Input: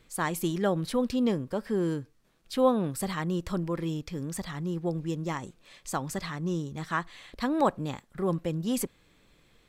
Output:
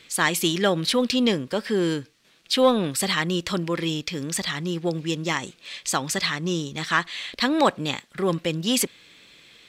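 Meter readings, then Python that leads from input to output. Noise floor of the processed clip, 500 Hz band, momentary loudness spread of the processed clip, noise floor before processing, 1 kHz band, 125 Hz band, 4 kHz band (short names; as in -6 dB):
-57 dBFS, +5.5 dB, 8 LU, -64 dBFS, +5.5 dB, +2.5 dB, +17.0 dB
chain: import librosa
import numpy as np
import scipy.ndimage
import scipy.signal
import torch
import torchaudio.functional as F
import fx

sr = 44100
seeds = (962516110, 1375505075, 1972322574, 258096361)

p1 = fx.weighting(x, sr, curve='D')
p2 = 10.0 ** (-20.0 / 20.0) * np.tanh(p1 / 10.0 ** (-20.0 / 20.0))
p3 = p1 + (p2 * librosa.db_to_amplitude(-5.0))
y = p3 * librosa.db_to_amplitude(2.5)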